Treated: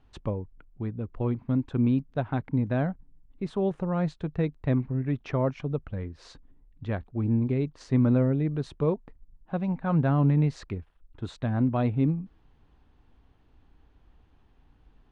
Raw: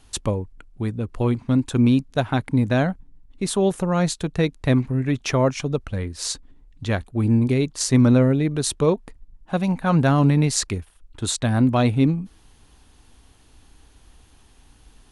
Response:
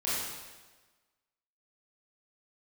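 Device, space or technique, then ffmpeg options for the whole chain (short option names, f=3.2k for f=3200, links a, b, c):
phone in a pocket: -af "lowpass=3.5k,equalizer=f=150:t=o:w=0.3:g=3.5,highshelf=f=2.5k:g=-12,volume=-7dB"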